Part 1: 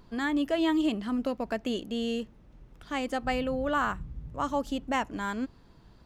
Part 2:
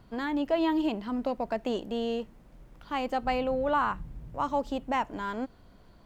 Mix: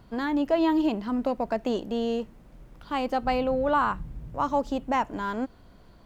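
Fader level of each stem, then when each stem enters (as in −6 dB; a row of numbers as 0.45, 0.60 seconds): −13.0, +2.5 decibels; 0.00, 0.00 seconds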